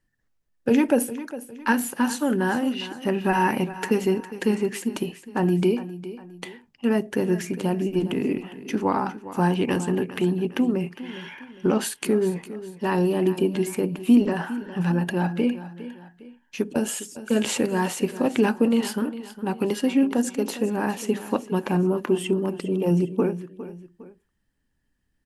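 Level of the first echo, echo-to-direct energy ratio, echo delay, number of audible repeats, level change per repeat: −14.5 dB, −14.0 dB, 407 ms, 2, −8.0 dB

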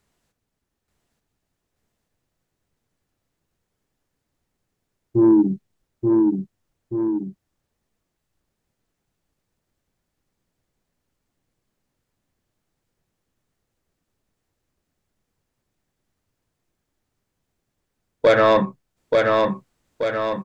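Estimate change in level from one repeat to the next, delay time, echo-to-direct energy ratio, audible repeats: −5.5 dB, 881 ms, −2.0 dB, 2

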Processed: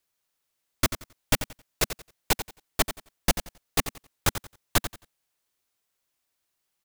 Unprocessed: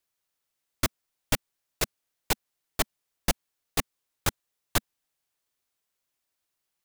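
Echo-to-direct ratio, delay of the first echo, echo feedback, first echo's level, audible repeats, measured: −11.0 dB, 89 ms, 23%, −11.0 dB, 2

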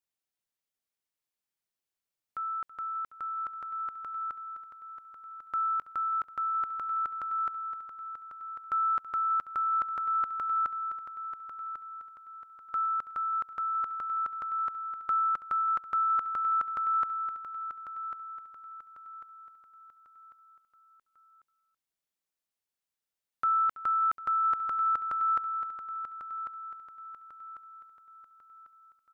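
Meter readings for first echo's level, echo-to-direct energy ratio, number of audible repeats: −16.5 dB, −8.5 dB, 7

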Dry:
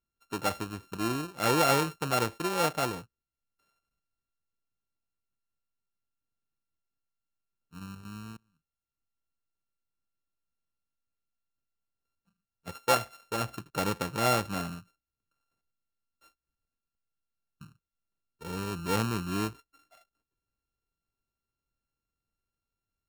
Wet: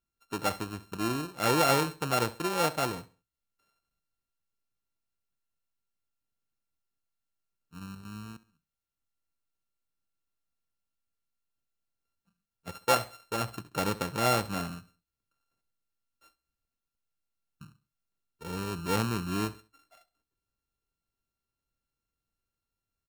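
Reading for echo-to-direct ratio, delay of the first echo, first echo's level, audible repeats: −17.5 dB, 67 ms, −18.0 dB, 2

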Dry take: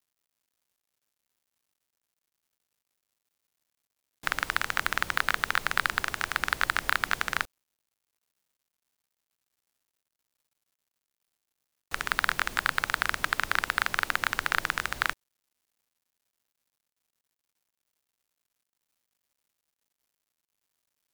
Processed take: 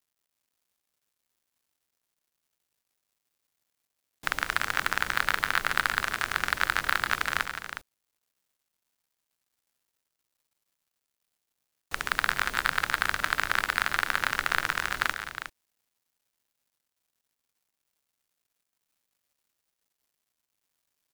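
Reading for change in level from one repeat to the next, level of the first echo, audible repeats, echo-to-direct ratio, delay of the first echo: repeats not evenly spaced, −12.5 dB, 3, −6.5 dB, 143 ms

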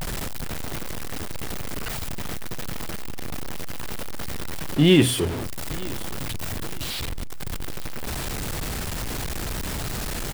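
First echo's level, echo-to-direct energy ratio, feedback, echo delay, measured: −21.0 dB, −20.5 dB, 34%, 914 ms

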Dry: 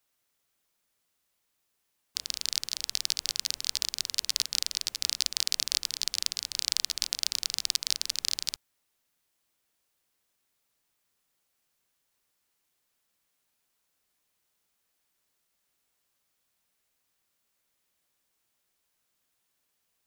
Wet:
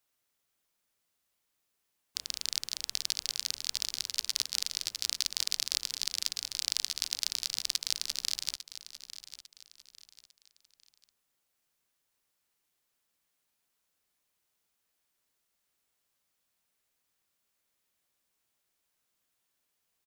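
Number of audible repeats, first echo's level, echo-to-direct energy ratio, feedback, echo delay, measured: 3, −13.5 dB, −13.0 dB, 34%, 850 ms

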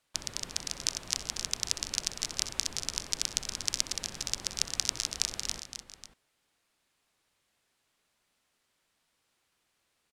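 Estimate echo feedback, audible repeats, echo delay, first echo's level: repeats not evenly spaced, 4, 64 ms, −17.0 dB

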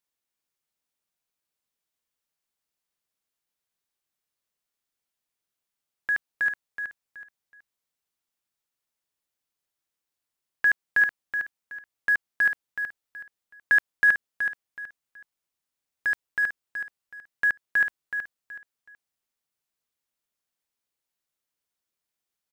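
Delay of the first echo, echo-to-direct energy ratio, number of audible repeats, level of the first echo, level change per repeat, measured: 374 ms, −7.5 dB, 3, −8.0 dB, −10.5 dB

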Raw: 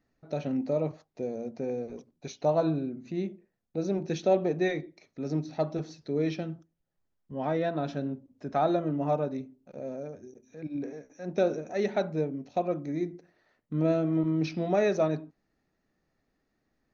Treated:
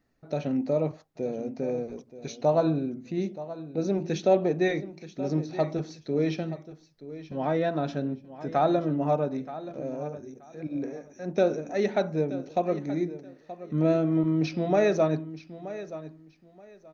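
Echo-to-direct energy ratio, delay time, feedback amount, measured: −14.5 dB, 927 ms, 21%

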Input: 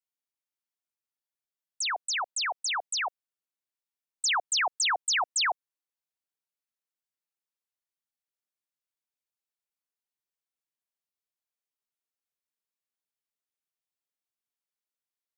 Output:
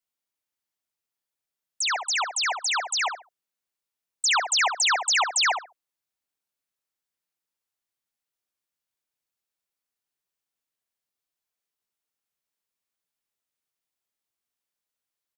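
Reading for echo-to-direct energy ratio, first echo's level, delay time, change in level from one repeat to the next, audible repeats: −7.5 dB, −7.5 dB, 69 ms, −14.5 dB, 2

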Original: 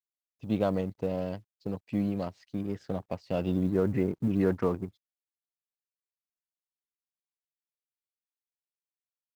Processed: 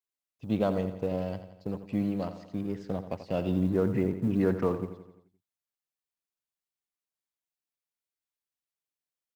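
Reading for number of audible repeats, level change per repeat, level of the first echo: 5, −5.5 dB, −11.5 dB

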